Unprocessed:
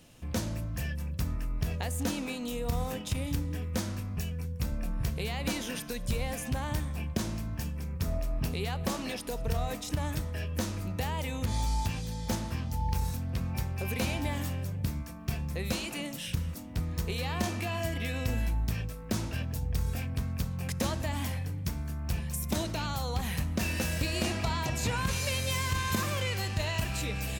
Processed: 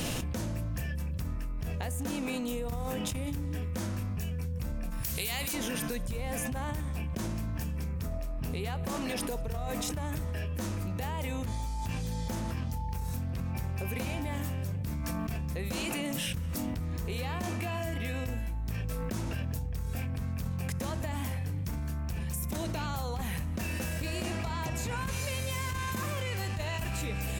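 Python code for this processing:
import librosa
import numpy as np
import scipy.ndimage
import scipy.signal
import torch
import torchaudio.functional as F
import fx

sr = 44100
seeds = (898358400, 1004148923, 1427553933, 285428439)

y = fx.pre_emphasis(x, sr, coefficient=0.9, at=(4.89, 5.53), fade=0.02)
y = fx.dynamic_eq(y, sr, hz=4300.0, q=1.0, threshold_db=-51.0, ratio=4.0, max_db=-5)
y = fx.env_flatten(y, sr, amount_pct=100)
y = y * 10.0 ** (-7.5 / 20.0)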